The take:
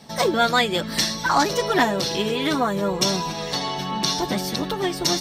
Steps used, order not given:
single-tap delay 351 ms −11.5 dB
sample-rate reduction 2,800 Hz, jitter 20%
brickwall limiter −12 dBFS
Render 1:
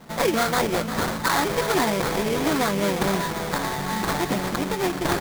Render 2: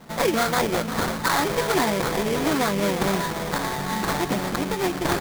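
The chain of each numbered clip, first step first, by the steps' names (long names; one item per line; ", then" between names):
brickwall limiter, then sample-rate reduction, then single-tap delay
brickwall limiter, then single-tap delay, then sample-rate reduction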